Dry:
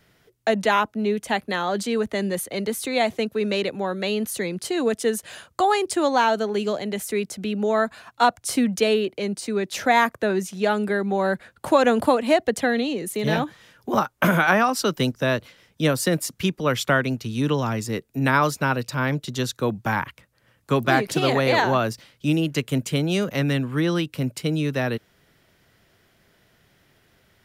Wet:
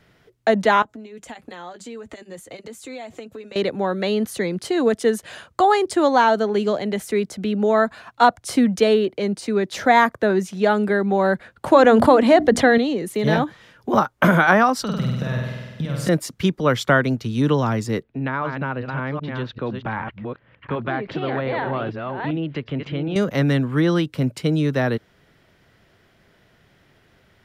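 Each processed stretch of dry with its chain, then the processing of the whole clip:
0.82–3.56 s: peaking EQ 7.3 kHz +11.5 dB 0.33 oct + compression 12:1, threshold -34 dBFS + comb of notches 200 Hz
11.72–12.78 s: treble shelf 8.6 kHz -6 dB + hum notches 60/120/180/240/300 Hz + level flattener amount 50%
14.82–16.09 s: resonant low shelf 230 Hz +8 dB, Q 3 + compression 5:1, threshold -28 dBFS + flutter echo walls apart 8.3 m, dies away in 1.3 s
18.03–23.16 s: chunks repeated in reverse 389 ms, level -7.5 dB + low-pass 3.3 kHz 24 dB/octave + compression 2:1, threshold -31 dBFS
whole clip: low-pass 3.4 kHz 6 dB/octave; dynamic bell 2.6 kHz, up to -7 dB, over -48 dBFS, Q 5.3; trim +4 dB

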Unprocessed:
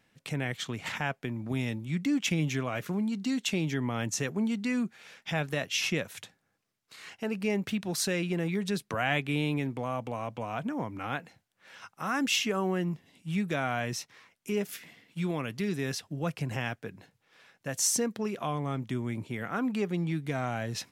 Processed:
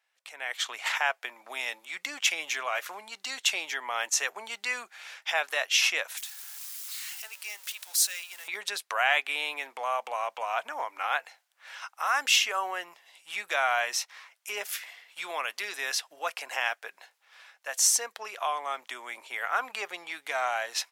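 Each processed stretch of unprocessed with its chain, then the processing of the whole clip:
6.17–8.48 s: jump at every zero crossing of -39.5 dBFS + differentiator
whole clip: high-pass 700 Hz 24 dB/octave; level rider gain up to 14.5 dB; trim -7 dB

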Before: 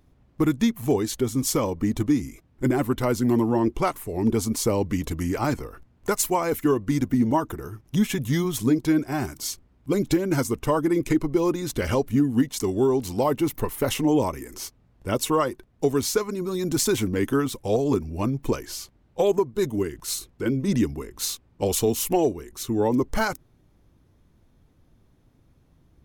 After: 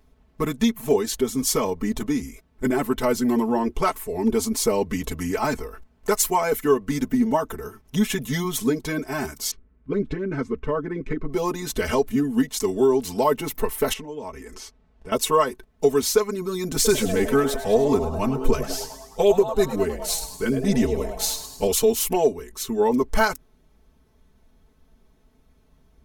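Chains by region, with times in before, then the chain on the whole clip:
9.51–11.29 s: low-pass 1.6 kHz + peaking EQ 780 Hz -10.5 dB 0.94 oct
13.93–15.12 s: compression 3:1, threshold -35 dBFS + distance through air 57 m
16.74–21.67 s: bass shelf 100 Hz +11 dB + frequency-shifting echo 103 ms, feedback 55%, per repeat +130 Hz, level -10.5 dB
whole clip: peaking EQ 190 Hz -6 dB 1.1 oct; comb 4.6 ms, depth 100%

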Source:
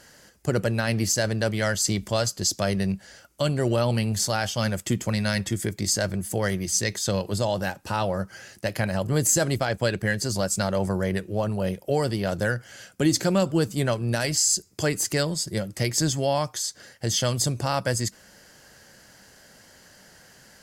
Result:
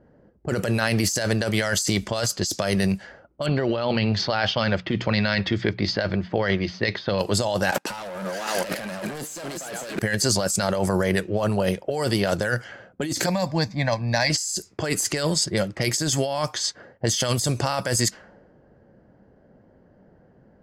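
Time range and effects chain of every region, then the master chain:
3.46–7.19 s: steep low-pass 4.6 kHz + hum notches 60/120/180 Hz
7.72–9.99 s: backward echo that repeats 250 ms, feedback 45%, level -10 dB + steep high-pass 160 Hz + waveshaping leveller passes 5
13.26–14.30 s: bass shelf 150 Hz -2 dB + static phaser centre 2 kHz, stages 8
whole clip: level-controlled noise filter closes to 330 Hz, open at -21.5 dBFS; bass shelf 300 Hz -8 dB; compressor with a negative ratio -30 dBFS, ratio -1; trim +5 dB

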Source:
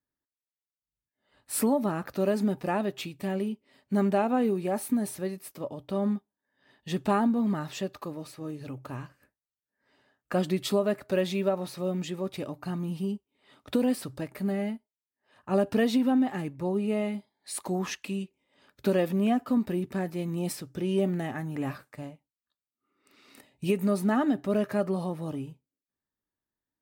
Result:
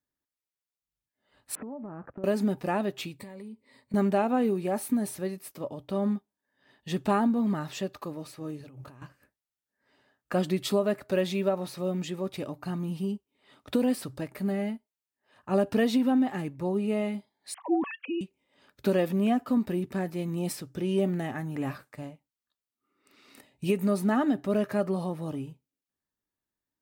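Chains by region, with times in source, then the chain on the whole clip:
1.55–2.24 s: gate -43 dBFS, range -10 dB + Gaussian low-pass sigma 5.3 samples + compression 10:1, threshold -36 dBFS
3.18–3.94 s: rippled EQ curve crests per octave 0.97, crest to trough 11 dB + compression 12:1, threshold -39 dBFS
8.61–9.02 s: hum notches 50/100/150 Hz + compressor with a negative ratio -48 dBFS
17.54–18.21 s: formants replaced by sine waves + dynamic bell 400 Hz, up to +4 dB, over -43 dBFS, Q 2
whole clip: none

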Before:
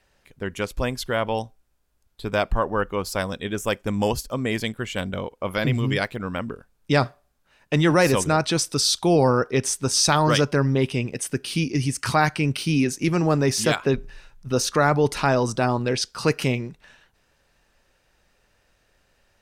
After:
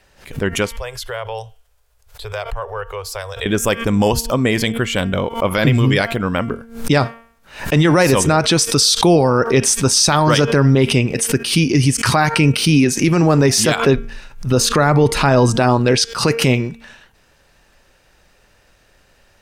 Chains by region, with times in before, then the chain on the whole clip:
0.69–3.46 s: elliptic band-stop 110–440 Hz + compression 2:1, threshold -41 dBFS
14.51–15.57 s: bass shelf 180 Hz +5.5 dB + band-stop 5.7 kHz, Q 10
whole clip: de-hum 229.8 Hz, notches 15; loudness maximiser +13 dB; swell ahead of each attack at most 130 dB/s; trim -3 dB

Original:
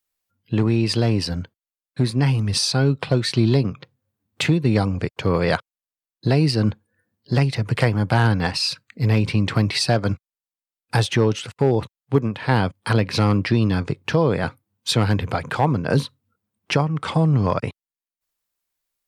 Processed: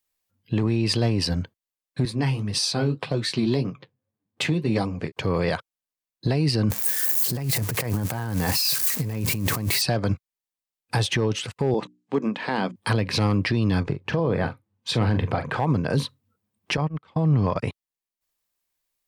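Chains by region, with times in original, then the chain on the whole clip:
2.05–5.12 s: high-pass 130 Hz + flange 1.8 Hz, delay 5.8 ms, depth 8.1 ms, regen -44% + tape noise reduction on one side only decoder only
6.70–9.82 s: zero-crossing glitches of -19 dBFS + peaking EQ 3.4 kHz -6 dB 1.2 oct + compressor with a negative ratio -25 dBFS
11.74–12.76 s: elliptic band-pass 190–7800 Hz + hum notches 60/120/180/240/300/360 Hz
13.83–15.60 s: low-pass 2.2 kHz 6 dB/octave + doubling 42 ms -11.5 dB
16.77–17.56 s: gate -22 dBFS, range -29 dB + low-pass 4.8 kHz
whole clip: band-stop 1.4 kHz, Q 12; peak limiter -14.5 dBFS; trim +1 dB

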